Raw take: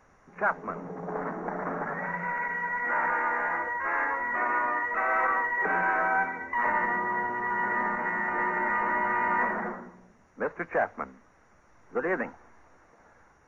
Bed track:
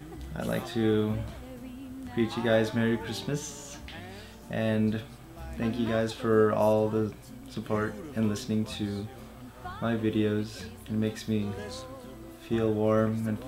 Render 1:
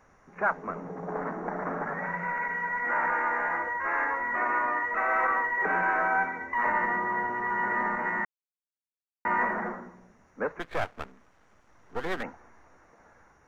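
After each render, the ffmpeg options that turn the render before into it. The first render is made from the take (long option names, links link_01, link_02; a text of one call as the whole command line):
ffmpeg -i in.wav -filter_complex "[0:a]asplit=3[link_01][link_02][link_03];[link_01]afade=type=out:start_time=10.59:duration=0.02[link_04];[link_02]aeval=exprs='max(val(0),0)':channel_layout=same,afade=type=in:start_time=10.59:duration=0.02,afade=type=out:start_time=12.22:duration=0.02[link_05];[link_03]afade=type=in:start_time=12.22:duration=0.02[link_06];[link_04][link_05][link_06]amix=inputs=3:normalize=0,asplit=3[link_07][link_08][link_09];[link_07]atrim=end=8.25,asetpts=PTS-STARTPTS,afade=type=out:start_time=8.246:duration=0.004:curve=hsin[link_10];[link_08]atrim=start=8.25:end=9.25,asetpts=PTS-STARTPTS,volume=0[link_11];[link_09]atrim=start=9.25,asetpts=PTS-STARTPTS,afade=type=in:duration=0.004:curve=hsin[link_12];[link_10][link_11][link_12]concat=n=3:v=0:a=1" out.wav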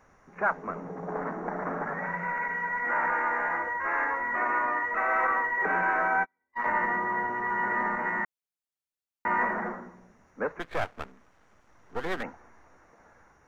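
ffmpeg -i in.wav -filter_complex "[0:a]asplit=3[link_01][link_02][link_03];[link_01]afade=type=out:start_time=6.16:duration=0.02[link_04];[link_02]agate=range=-44dB:threshold=-27dB:ratio=16:release=100:detection=peak,afade=type=in:start_time=6.16:duration=0.02,afade=type=out:start_time=6.7:duration=0.02[link_05];[link_03]afade=type=in:start_time=6.7:duration=0.02[link_06];[link_04][link_05][link_06]amix=inputs=3:normalize=0" out.wav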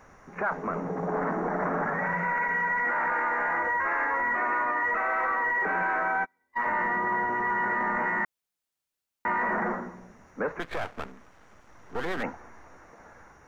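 ffmpeg -i in.wav -af "acontrast=70,alimiter=limit=-20dB:level=0:latency=1:release=18" out.wav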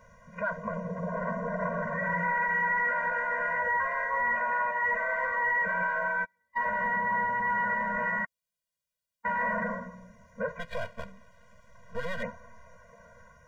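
ffmpeg -i in.wav -af "afftfilt=real='re*eq(mod(floor(b*sr/1024/230),2),0)':imag='im*eq(mod(floor(b*sr/1024/230),2),0)':win_size=1024:overlap=0.75" out.wav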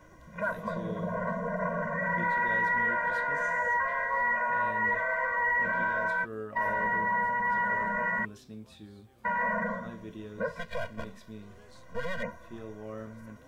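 ffmpeg -i in.wav -i bed.wav -filter_complex "[1:a]volume=-16.5dB[link_01];[0:a][link_01]amix=inputs=2:normalize=0" out.wav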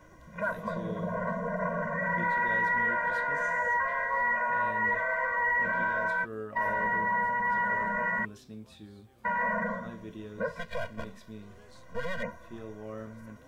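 ffmpeg -i in.wav -af anull out.wav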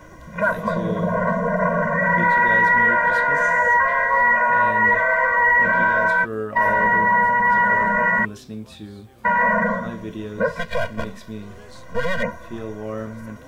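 ffmpeg -i in.wav -af "volume=11.5dB" out.wav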